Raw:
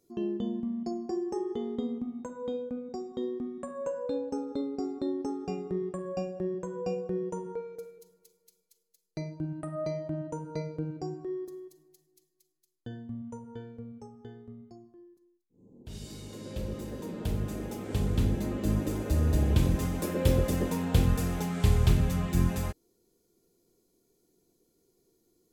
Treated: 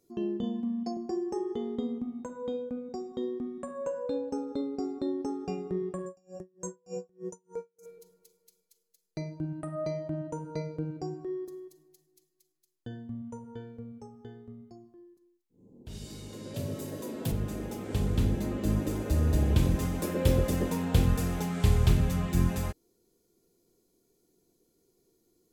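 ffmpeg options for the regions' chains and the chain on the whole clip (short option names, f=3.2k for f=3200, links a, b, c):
-filter_complex "[0:a]asettb=1/sr,asplit=3[a][b][c];[a]atrim=end=0.434[d];[b]atrim=start=0.43:end=0.97,asetpts=PTS-STARTPTS,afade=t=in:d=0.004:c=qsin,afade=t=out:st=0.536:d=0.004:c=qsin,highpass=f=260:p=1,aecho=1:1:4:0.82,atrim=end_sample=23814[e];[c]atrim=start=0.966[f];[d][e]acrossfade=d=0.004:c1=hsin:c2=qsin[g];[g][f]acrossfade=d=0.004:c1=qsin:c2=hsin,asettb=1/sr,asplit=3[h][i][j];[h]atrim=end=6.064[k];[i]atrim=start=6.06:end=7.86,asetpts=PTS-STARTPTS,afade=t=in:d=0.004:c=qsin,afade=t=out:st=1.796:d=0.004:c=qsin,highshelf=f=4.9k:t=q:w=3:g=10.5,aeval=exprs='val(0)*pow(10,-38*(0.5-0.5*cos(2*PI*3.3*n/s))/20)':c=same[l];[j]atrim=start=7.856[m];[k][l]acrossfade=d=0.004:c1=hsin:c2=qsin[n];[n][m]acrossfade=d=0.004:c1=qsin:c2=hsin,asettb=1/sr,asplit=3[o][p][q];[o]atrim=end=16.544[r];[p]atrim=start=16.54:end=17.32,asetpts=PTS-STARTPTS,afade=t=in:d=0.004:c=qsin,afade=t=out:st=0.776:d=0.004:c=qsin,highshelf=f=6k:g=10,afreqshift=49[s];[q]atrim=start=17.316[t];[r][s]acrossfade=d=0.004:c1=hsin:c2=qsin[u];[u][t]acrossfade=d=0.004:c1=qsin:c2=hsin"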